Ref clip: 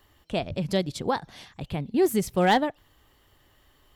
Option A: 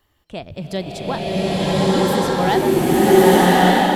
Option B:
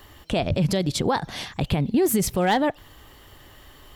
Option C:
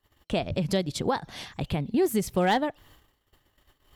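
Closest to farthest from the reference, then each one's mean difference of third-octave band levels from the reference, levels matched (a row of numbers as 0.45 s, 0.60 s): C, B, A; 3.0 dB, 5.0 dB, 11.5 dB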